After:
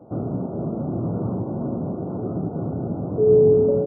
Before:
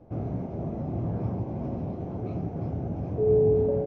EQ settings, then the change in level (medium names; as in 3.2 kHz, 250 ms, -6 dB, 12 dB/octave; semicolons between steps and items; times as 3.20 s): high-pass 150 Hz 12 dB/octave; dynamic bell 760 Hz, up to -7 dB, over -45 dBFS, Q 2.1; brick-wall FIR low-pass 1.5 kHz; +8.0 dB